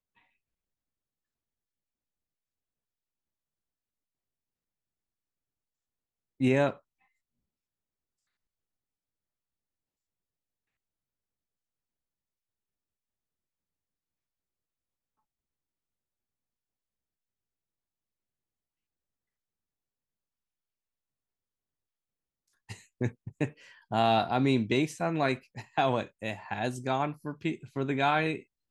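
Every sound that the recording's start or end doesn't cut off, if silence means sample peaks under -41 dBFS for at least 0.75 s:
6.40–6.73 s

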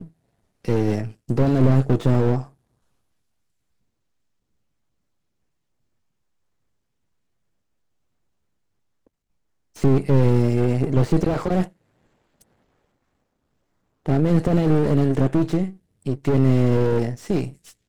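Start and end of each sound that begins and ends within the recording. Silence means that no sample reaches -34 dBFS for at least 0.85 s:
9.76–11.67 s

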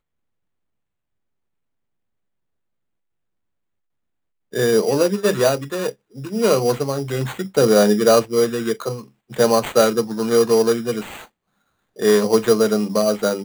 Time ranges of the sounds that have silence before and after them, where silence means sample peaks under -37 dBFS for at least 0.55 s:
4.53–11.24 s

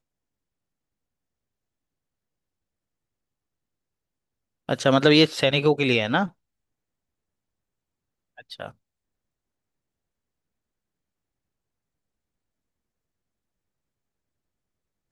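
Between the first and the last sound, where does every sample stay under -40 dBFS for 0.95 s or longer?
6.29–8.38 s

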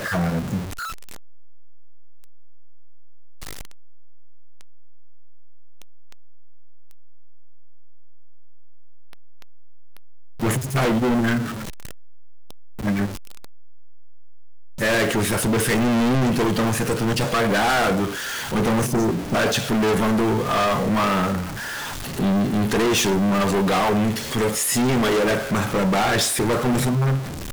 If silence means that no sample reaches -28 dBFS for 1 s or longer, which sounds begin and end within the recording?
10.42–11.52 s
12.80–13.08 s

